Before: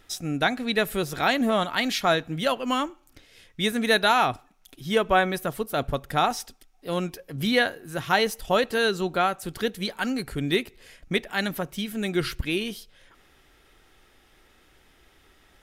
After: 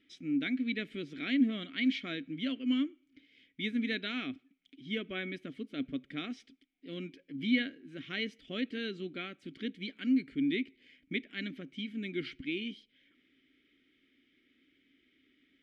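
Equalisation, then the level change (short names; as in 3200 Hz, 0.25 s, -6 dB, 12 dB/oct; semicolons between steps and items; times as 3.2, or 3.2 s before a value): vowel filter i; air absorption 67 m; +3.0 dB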